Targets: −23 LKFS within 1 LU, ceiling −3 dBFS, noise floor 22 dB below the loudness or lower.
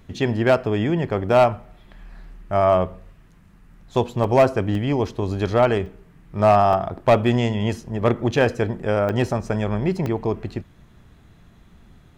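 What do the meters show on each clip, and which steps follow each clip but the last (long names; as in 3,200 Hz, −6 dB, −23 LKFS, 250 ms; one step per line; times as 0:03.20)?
share of clipped samples 0.7%; peaks flattened at −8.5 dBFS; number of dropouts 6; longest dropout 2.3 ms; integrated loudness −21.0 LKFS; sample peak −8.5 dBFS; target loudness −23.0 LKFS
→ clipped peaks rebuilt −8.5 dBFS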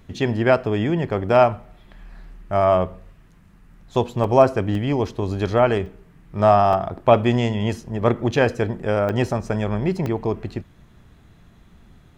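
share of clipped samples 0.0%; number of dropouts 6; longest dropout 2.3 ms
→ repair the gap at 0:04.24/0:04.75/0:05.86/0:06.73/0:09.09/0:10.06, 2.3 ms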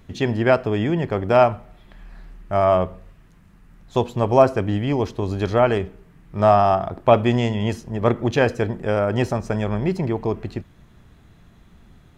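number of dropouts 0; integrated loudness −20.5 LKFS; sample peak −2.0 dBFS; target loudness −23.0 LKFS
→ level −2.5 dB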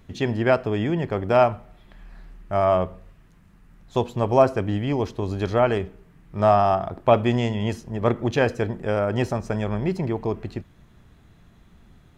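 integrated loudness −23.0 LKFS; sample peak −4.5 dBFS; background noise floor −54 dBFS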